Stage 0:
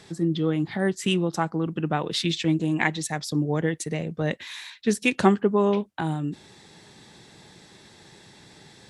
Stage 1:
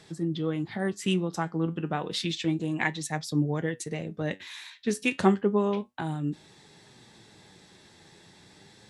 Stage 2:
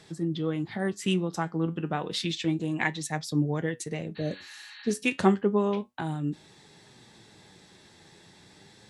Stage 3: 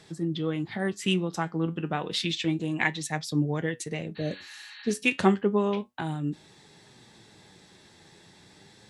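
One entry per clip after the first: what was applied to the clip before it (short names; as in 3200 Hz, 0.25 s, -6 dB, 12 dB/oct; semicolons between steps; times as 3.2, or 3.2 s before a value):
flange 0.31 Hz, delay 6.2 ms, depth 6.1 ms, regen +70%
spectral repair 4.19–4.88, 770–4500 Hz after
dynamic EQ 2700 Hz, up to +4 dB, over -47 dBFS, Q 1.1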